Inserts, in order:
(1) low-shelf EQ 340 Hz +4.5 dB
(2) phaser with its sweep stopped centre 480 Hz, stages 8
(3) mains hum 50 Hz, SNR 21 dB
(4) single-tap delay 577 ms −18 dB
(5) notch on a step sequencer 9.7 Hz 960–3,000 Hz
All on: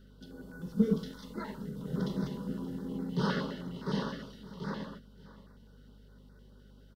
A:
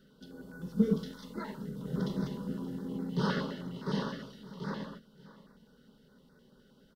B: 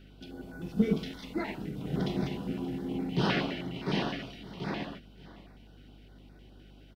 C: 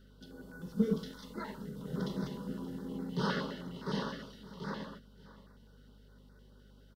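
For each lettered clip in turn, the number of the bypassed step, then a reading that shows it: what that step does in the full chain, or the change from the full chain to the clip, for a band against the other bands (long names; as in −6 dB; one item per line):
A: 3, change in momentary loudness spread −3 LU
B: 2, 4 kHz band +4.5 dB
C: 1, 125 Hz band −3.0 dB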